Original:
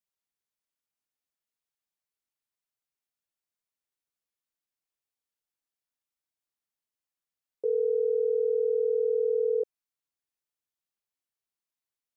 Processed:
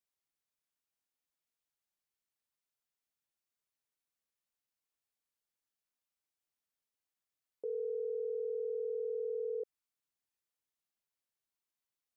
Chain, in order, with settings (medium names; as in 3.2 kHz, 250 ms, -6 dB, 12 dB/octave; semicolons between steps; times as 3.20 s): peak limiter -30.5 dBFS, peak gain reduction 10.5 dB; trim -1.5 dB